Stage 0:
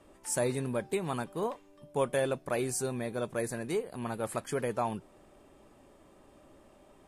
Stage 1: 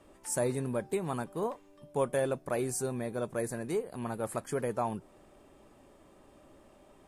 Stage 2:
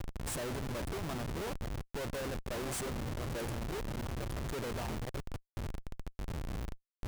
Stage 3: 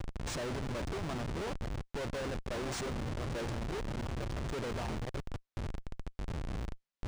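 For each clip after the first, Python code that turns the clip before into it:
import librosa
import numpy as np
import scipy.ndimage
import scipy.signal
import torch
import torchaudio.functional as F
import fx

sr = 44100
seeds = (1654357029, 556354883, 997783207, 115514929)

y1 = fx.dynamic_eq(x, sr, hz=3200.0, q=0.81, threshold_db=-52.0, ratio=4.0, max_db=-6)
y2 = fx.reverse_delay(y1, sr, ms=608, wet_db=-13)
y2 = fx.dmg_wind(y2, sr, seeds[0], corner_hz=110.0, level_db=-32.0)
y2 = fx.schmitt(y2, sr, flips_db=-39.5)
y2 = y2 * 10.0 ** (-7.0 / 20.0)
y3 = np.interp(np.arange(len(y2)), np.arange(len(y2))[::3], y2[::3])
y3 = y3 * 10.0 ** (1.0 / 20.0)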